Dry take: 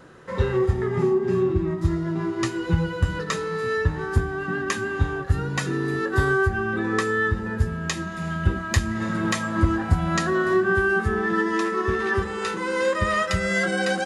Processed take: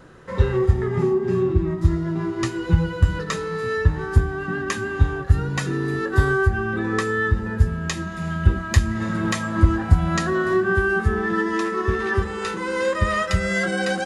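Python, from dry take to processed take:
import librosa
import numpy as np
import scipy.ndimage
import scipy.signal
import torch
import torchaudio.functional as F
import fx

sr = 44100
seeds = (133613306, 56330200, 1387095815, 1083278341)

y = fx.low_shelf(x, sr, hz=79.0, db=11.0)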